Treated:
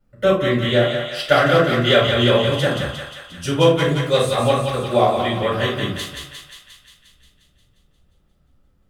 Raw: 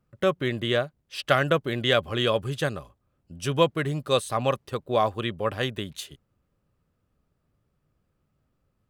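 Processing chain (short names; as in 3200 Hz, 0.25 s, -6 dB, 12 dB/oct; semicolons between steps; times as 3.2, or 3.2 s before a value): vibrato 8.5 Hz 35 cents; on a send: thinning echo 0.177 s, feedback 67%, high-pass 750 Hz, level -4.5 dB; on the sum: shoebox room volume 250 m³, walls furnished, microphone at 7 m; gain -5 dB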